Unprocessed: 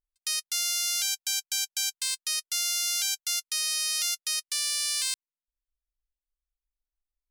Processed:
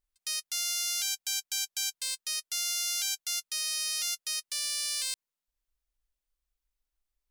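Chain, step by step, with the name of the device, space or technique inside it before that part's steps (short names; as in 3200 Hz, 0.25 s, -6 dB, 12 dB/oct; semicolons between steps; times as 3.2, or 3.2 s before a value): soft clipper into limiter (soft clip -16.5 dBFS, distortion -20 dB; limiter -25 dBFS, peak gain reduction 7.5 dB); gain +4.5 dB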